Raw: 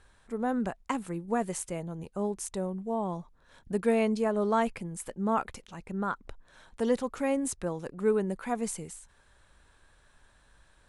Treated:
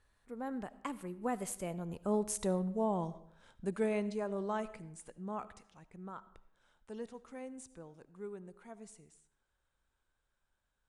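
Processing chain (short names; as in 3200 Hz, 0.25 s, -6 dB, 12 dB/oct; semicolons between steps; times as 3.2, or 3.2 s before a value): Doppler pass-by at 2.44, 19 m/s, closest 12 m; digital reverb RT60 0.73 s, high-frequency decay 0.7×, pre-delay 35 ms, DRR 16 dB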